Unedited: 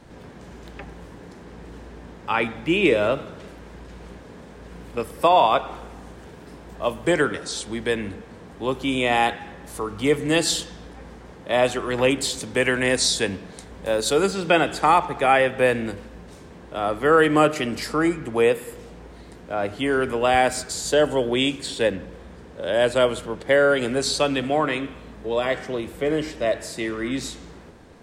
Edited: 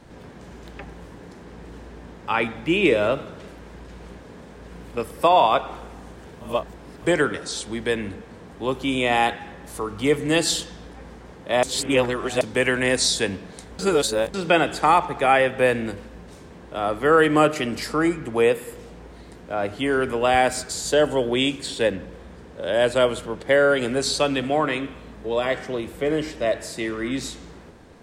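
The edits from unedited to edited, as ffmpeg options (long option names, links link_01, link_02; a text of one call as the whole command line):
ffmpeg -i in.wav -filter_complex "[0:a]asplit=7[link_01][link_02][link_03][link_04][link_05][link_06][link_07];[link_01]atrim=end=6.412[link_08];[link_02]atrim=start=6.408:end=7.022,asetpts=PTS-STARTPTS,areverse[link_09];[link_03]atrim=start=7.018:end=11.632[link_10];[link_04]atrim=start=11.628:end=12.412,asetpts=PTS-STARTPTS,areverse[link_11];[link_05]atrim=start=12.408:end=13.792[link_12];[link_06]atrim=start=13.788:end=14.342,asetpts=PTS-STARTPTS,areverse[link_13];[link_07]atrim=start=14.338[link_14];[link_08][link_09]acrossfade=duration=0.004:curve1=hsin:curve2=hsin[link_15];[link_15][link_10]acrossfade=duration=0.004:curve1=hsin:curve2=hsin[link_16];[link_16][link_11]acrossfade=duration=0.004:curve1=hsin:curve2=hsin[link_17];[link_17][link_12]acrossfade=duration=0.004:curve1=hsin:curve2=hsin[link_18];[link_18][link_13]acrossfade=duration=0.004:curve1=hsin:curve2=hsin[link_19];[link_19][link_14]acrossfade=duration=0.004:curve1=hsin:curve2=hsin" out.wav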